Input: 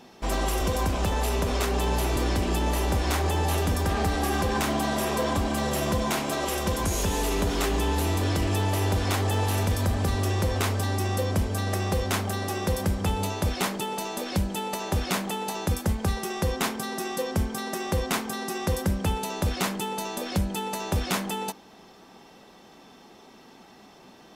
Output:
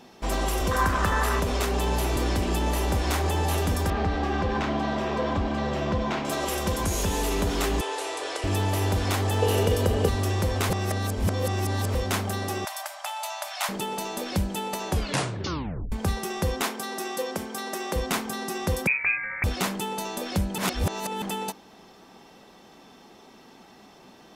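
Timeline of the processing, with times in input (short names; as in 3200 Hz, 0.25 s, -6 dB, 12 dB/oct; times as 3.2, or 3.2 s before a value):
0.71–1.4 band shelf 1400 Hz +11.5 dB 1.1 oct
3.9–6.25 air absorption 180 m
7.81–8.44 elliptic band-pass 430–9600 Hz
9.42–10.09 small resonant body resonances 450/2900 Hz, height 14 dB, ringing for 30 ms
10.7–11.95 reverse
12.65–13.69 brick-wall FIR high-pass 570 Hz
14.89 tape stop 1.03 s
16.61–17.96 HPF 270 Hz
18.87–19.44 inverted band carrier 2500 Hz
20.58–21.22 reverse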